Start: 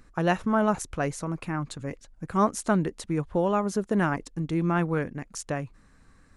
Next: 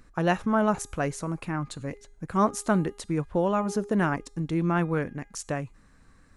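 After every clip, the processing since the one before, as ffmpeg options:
-af "bandreject=f=408.8:t=h:w=4,bandreject=f=817.6:t=h:w=4,bandreject=f=1.2264k:t=h:w=4,bandreject=f=1.6352k:t=h:w=4,bandreject=f=2.044k:t=h:w=4,bandreject=f=2.4528k:t=h:w=4,bandreject=f=2.8616k:t=h:w=4,bandreject=f=3.2704k:t=h:w=4,bandreject=f=3.6792k:t=h:w=4,bandreject=f=4.088k:t=h:w=4,bandreject=f=4.4968k:t=h:w=4,bandreject=f=4.9056k:t=h:w=4,bandreject=f=5.3144k:t=h:w=4,bandreject=f=5.7232k:t=h:w=4,bandreject=f=6.132k:t=h:w=4,bandreject=f=6.5408k:t=h:w=4,bandreject=f=6.9496k:t=h:w=4,bandreject=f=7.3584k:t=h:w=4,bandreject=f=7.7672k:t=h:w=4,bandreject=f=8.176k:t=h:w=4,bandreject=f=8.5848k:t=h:w=4,bandreject=f=8.9936k:t=h:w=4,bandreject=f=9.4024k:t=h:w=4,bandreject=f=9.8112k:t=h:w=4,bandreject=f=10.22k:t=h:w=4,bandreject=f=10.6288k:t=h:w=4,bandreject=f=11.0376k:t=h:w=4,bandreject=f=11.4464k:t=h:w=4,bandreject=f=11.8552k:t=h:w=4,bandreject=f=12.264k:t=h:w=4,bandreject=f=12.6728k:t=h:w=4"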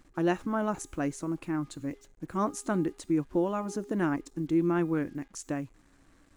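-af "superequalizer=6b=3.16:15b=1.41,acrusher=bits=8:mix=0:aa=0.5,volume=-6.5dB"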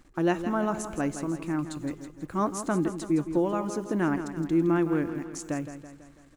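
-af "aecho=1:1:165|330|495|660|825|990:0.299|0.161|0.0871|0.047|0.0254|0.0137,volume=2dB"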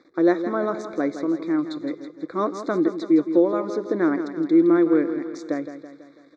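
-af "asuperstop=centerf=2900:order=12:qfactor=2.4,highpass=320,equalizer=f=320:t=q:w=4:g=6,equalizer=f=490:t=q:w=4:g=7,equalizer=f=860:t=q:w=4:g=-9,equalizer=f=1.6k:t=q:w=4:g=-3,equalizer=f=3.4k:t=q:w=4:g=9,lowpass=f=4.5k:w=0.5412,lowpass=f=4.5k:w=1.3066,volume=5dB"

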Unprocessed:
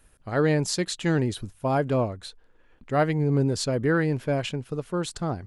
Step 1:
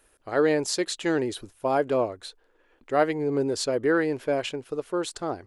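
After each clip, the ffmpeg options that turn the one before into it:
-af "lowshelf=f=250:t=q:w=1.5:g=-10.5"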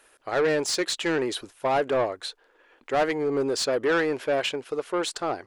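-filter_complex "[0:a]asplit=2[a][b];[b]highpass=f=720:p=1,volume=20dB,asoftclip=type=tanh:threshold=-8dB[c];[a][c]amix=inputs=2:normalize=0,lowpass=f=5.2k:p=1,volume=-6dB,volume=-6dB"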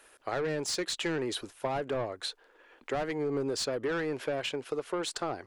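-filter_complex "[0:a]acrossover=split=200[a][b];[b]acompressor=threshold=-30dB:ratio=6[c];[a][c]amix=inputs=2:normalize=0"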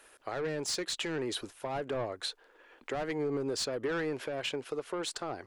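-af "alimiter=level_in=0.5dB:limit=-24dB:level=0:latency=1:release=205,volume=-0.5dB"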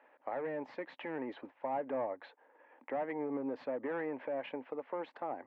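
-af "highpass=240,equalizer=f=260:t=q:w=4:g=8,equalizer=f=390:t=q:w=4:g=-7,equalizer=f=560:t=q:w=4:g=6,equalizer=f=870:t=q:w=4:g=9,equalizer=f=1.4k:t=q:w=4:g=-7,equalizer=f=2k:t=q:w=4:g=3,lowpass=f=2.1k:w=0.5412,lowpass=f=2.1k:w=1.3066,volume=-4.5dB"

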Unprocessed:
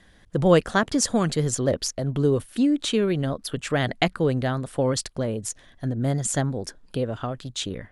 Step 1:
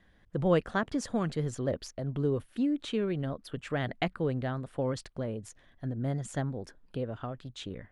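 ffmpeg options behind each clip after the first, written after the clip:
-af "deesser=0.3,bass=f=250:g=1,treble=f=4k:g=-11,volume=-8.5dB"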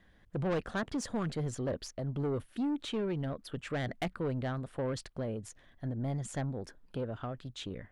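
-af "asoftclip=type=tanh:threshold=-28dB"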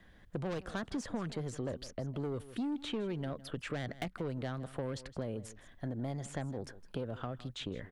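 -filter_complex "[0:a]aecho=1:1:159:0.0944,acrossover=split=250|3500[a][b][c];[a]acompressor=threshold=-45dB:ratio=4[d];[b]acompressor=threshold=-42dB:ratio=4[e];[c]acompressor=threshold=-55dB:ratio=4[f];[d][e][f]amix=inputs=3:normalize=0,volume=3.5dB"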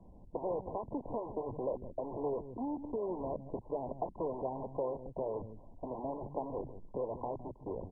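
-filter_complex "[0:a]acrossover=split=310[a][b];[a]aeval=exprs='(mod(141*val(0)+1,2)-1)/141':c=same[c];[c][b]amix=inputs=2:normalize=0,volume=5dB" -ar 22050 -c:a mp2 -b:a 8k

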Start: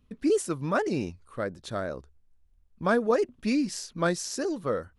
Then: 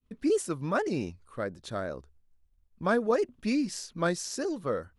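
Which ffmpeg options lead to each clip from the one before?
-af "agate=range=-33dB:threshold=-58dB:ratio=3:detection=peak,volume=-2dB"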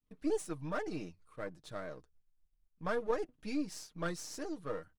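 -af "aeval=exprs='if(lt(val(0),0),0.447*val(0),val(0))':c=same,aecho=1:1:6.5:0.53,volume=-7.5dB"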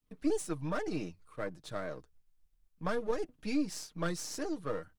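-filter_complex "[0:a]acrossover=split=310|3000[a][b][c];[b]acompressor=threshold=-37dB:ratio=6[d];[a][d][c]amix=inputs=3:normalize=0,volume=4.5dB"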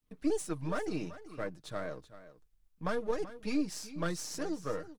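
-af "aecho=1:1:383:0.178"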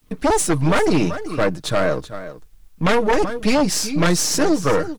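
-af "aeval=exprs='0.1*sin(PI/2*3.16*val(0)/0.1)':c=same,volume=8dB"

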